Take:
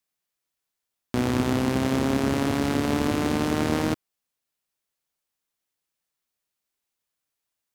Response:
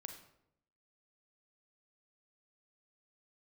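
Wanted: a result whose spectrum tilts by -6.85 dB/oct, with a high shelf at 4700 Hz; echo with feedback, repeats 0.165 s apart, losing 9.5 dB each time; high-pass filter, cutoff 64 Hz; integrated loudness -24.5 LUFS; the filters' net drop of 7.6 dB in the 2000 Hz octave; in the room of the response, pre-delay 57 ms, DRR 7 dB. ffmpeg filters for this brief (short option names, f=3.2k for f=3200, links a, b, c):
-filter_complex "[0:a]highpass=64,equalizer=f=2k:t=o:g=-8.5,highshelf=f=4.7k:g=-8.5,aecho=1:1:165|330|495|660:0.335|0.111|0.0365|0.012,asplit=2[a][b];[1:a]atrim=start_sample=2205,adelay=57[c];[b][c]afir=irnorm=-1:irlink=0,volume=-2.5dB[d];[a][d]amix=inputs=2:normalize=0"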